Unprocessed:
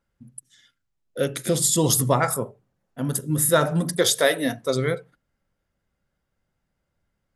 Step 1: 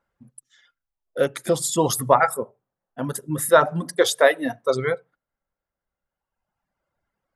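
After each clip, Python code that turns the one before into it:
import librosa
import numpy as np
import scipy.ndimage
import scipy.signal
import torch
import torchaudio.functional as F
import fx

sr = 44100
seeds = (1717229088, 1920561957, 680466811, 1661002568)

y = fx.dereverb_blind(x, sr, rt60_s=1.7)
y = fx.peak_eq(y, sr, hz=910.0, db=13.0, octaves=2.7)
y = y * 10.0 ** (-5.5 / 20.0)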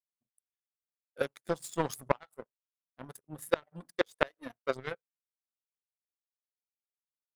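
y = fx.power_curve(x, sr, exponent=2.0)
y = fx.gate_flip(y, sr, shuts_db=-9.0, range_db=-29)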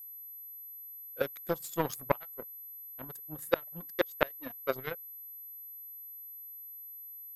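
y = x + 10.0 ** (-44.0 / 20.0) * np.sin(2.0 * np.pi * 12000.0 * np.arange(len(x)) / sr)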